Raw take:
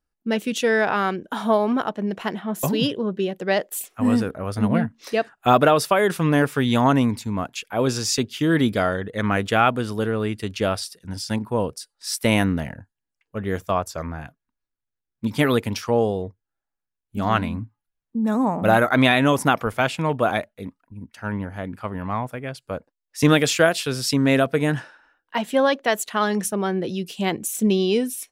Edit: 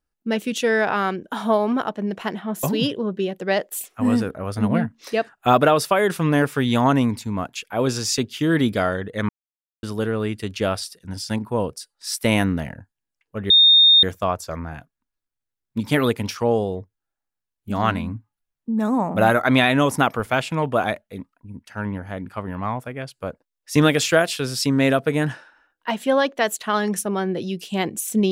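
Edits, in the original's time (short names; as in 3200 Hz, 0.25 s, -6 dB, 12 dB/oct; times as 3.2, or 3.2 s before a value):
9.29–9.83 mute
13.5 add tone 3670 Hz -9 dBFS 0.53 s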